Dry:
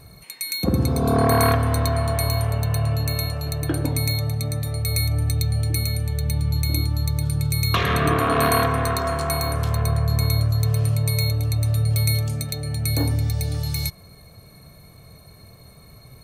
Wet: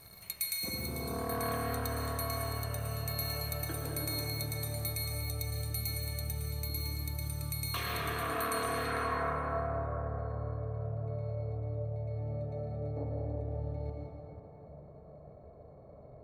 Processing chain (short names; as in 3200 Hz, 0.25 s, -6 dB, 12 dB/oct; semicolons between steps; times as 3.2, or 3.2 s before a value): G.711 law mismatch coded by A; reverse; compressor 8:1, threshold -33 dBFS, peak gain reduction 18 dB; reverse; low-pass sweep 14000 Hz -> 610 Hz, 8.45–9.27; low shelf 360 Hz -9 dB; reverb RT60 3.7 s, pre-delay 0.102 s, DRR -2 dB